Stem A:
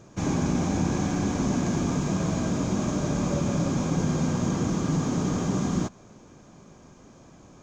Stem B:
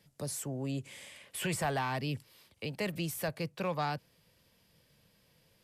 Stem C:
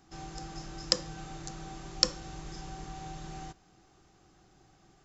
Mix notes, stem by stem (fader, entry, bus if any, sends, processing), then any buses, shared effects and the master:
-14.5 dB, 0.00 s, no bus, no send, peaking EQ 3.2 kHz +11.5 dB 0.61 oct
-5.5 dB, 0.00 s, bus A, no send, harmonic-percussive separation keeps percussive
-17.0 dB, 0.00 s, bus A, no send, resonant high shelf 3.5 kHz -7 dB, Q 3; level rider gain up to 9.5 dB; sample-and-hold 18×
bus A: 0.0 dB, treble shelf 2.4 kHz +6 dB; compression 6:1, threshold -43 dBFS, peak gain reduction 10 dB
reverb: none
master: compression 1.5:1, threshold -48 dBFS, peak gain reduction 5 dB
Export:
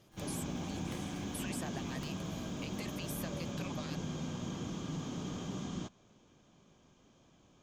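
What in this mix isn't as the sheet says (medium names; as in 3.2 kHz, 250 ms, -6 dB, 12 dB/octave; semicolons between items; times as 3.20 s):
stem C: missing level rider gain up to 9.5 dB; master: missing compression 1.5:1, threshold -48 dBFS, peak gain reduction 5 dB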